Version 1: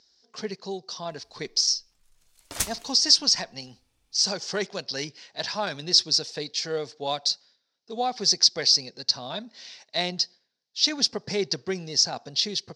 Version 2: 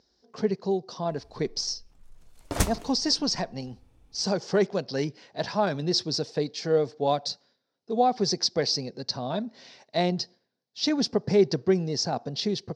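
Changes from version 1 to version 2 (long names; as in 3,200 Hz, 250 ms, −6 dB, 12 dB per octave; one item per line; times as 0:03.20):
background +5.0 dB
master: add tilt shelving filter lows +9 dB, about 1,300 Hz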